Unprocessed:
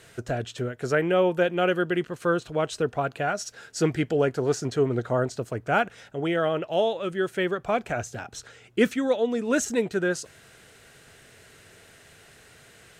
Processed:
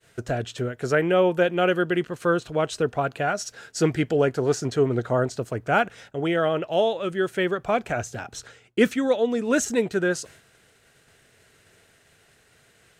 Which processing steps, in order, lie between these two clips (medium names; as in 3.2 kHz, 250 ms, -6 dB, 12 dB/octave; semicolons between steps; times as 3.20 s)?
expander -45 dBFS; trim +2 dB